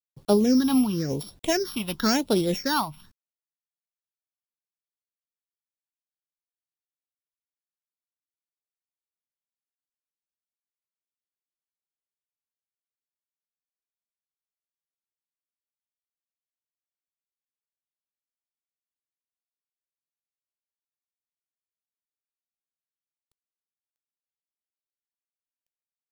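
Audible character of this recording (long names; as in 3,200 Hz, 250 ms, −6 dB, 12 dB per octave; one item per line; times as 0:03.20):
a buzz of ramps at a fixed pitch in blocks of 8 samples
phaser sweep stages 6, 0.95 Hz, lowest notch 450–1,900 Hz
a quantiser's noise floor 12 bits, dither none
amplitude modulation by smooth noise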